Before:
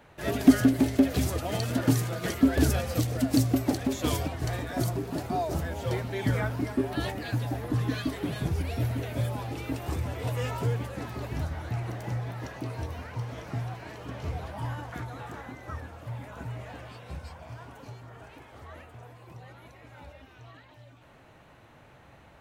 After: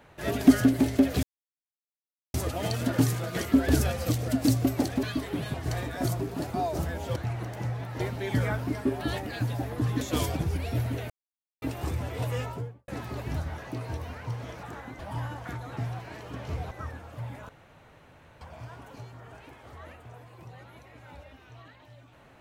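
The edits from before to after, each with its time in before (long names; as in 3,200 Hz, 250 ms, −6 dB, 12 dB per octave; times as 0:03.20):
0:01.23: splice in silence 1.11 s
0:03.92–0:04.30: swap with 0:07.93–0:08.44
0:09.15–0:09.67: silence
0:10.35–0:10.93: fade out and dull
0:11.63–0:12.47: move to 0:05.92
0:13.52–0:14.46: swap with 0:15.24–0:15.60
0:16.38–0:17.30: fill with room tone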